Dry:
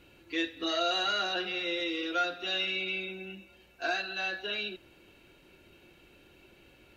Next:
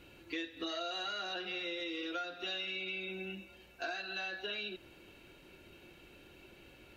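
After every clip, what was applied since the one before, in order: compressor 6:1, threshold -38 dBFS, peak gain reduction 13 dB; gain +1 dB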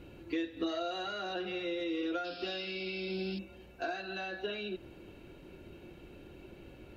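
tilt shelf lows +6.5 dB; painted sound noise, 2.24–3.39, 2300–5400 Hz -52 dBFS; gain +2.5 dB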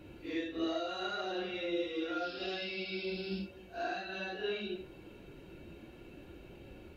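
phase scrambler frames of 0.2 s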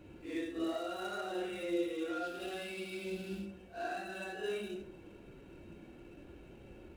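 median filter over 9 samples; reverb RT60 0.50 s, pre-delay 42 ms, DRR 6.5 dB; gain -2.5 dB

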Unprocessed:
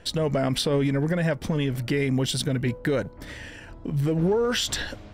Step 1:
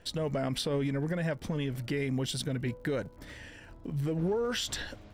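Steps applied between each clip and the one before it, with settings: crackle 70/s -46 dBFS; gain -7.5 dB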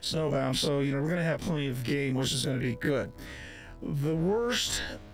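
spectral dilation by 60 ms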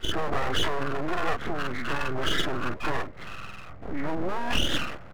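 nonlinear frequency compression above 1100 Hz 4:1; comb 1.5 ms, depth 52%; full-wave rectifier; gain +2.5 dB

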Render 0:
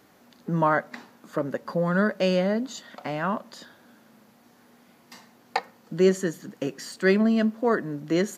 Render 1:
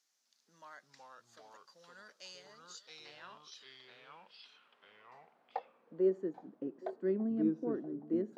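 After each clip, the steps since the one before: band-pass sweep 6000 Hz -> 310 Hz, 2.59–6.49; band-limited delay 0.82 s, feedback 51%, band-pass 650 Hz, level -16.5 dB; echoes that change speed 0.255 s, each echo -3 st, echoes 2; gain -8 dB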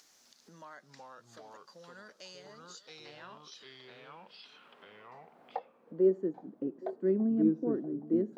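tilt shelf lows +4.5 dB, about 680 Hz; in parallel at +1 dB: upward compressor, threshold -42 dBFS; on the sum: gain -4.5 dB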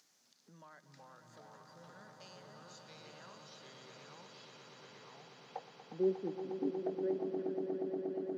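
high-pass sweep 130 Hz -> 3300 Hz, 6.42–7.86; on a send: swelling echo 0.119 s, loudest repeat 8, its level -9.5 dB; on the sum: gain -8 dB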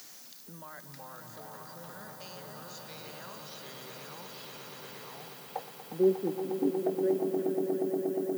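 reverse; upward compressor, threshold -49 dBFS; reverse; added noise violet -60 dBFS; gain +7.5 dB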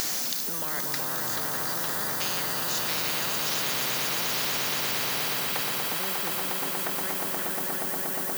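spectral compressor 10:1; gain +3.5 dB

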